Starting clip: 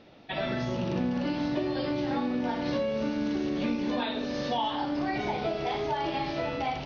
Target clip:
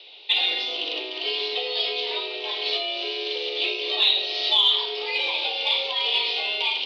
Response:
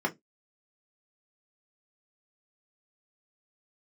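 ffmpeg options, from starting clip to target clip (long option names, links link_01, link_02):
-filter_complex "[0:a]highpass=frequency=230:width_type=q:width=0.5412,highpass=frequency=230:width_type=q:width=1.307,lowpass=frequency=3600:width_type=q:width=0.5176,lowpass=frequency=3600:width_type=q:width=0.7071,lowpass=frequency=3600:width_type=q:width=1.932,afreqshift=130,asplit=2[link_01][link_02];[1:a]atrim=start_sample=2205[link_03];[link_02][link_03]afir=irnorm=-1:irlink=0,volume=-21.5dB[link_04];[link_01][link_04]amix=inputs=2:normalize=0,aexciter=amount=14.9:drive=7.8:freq=2600,volume=-2.5dB"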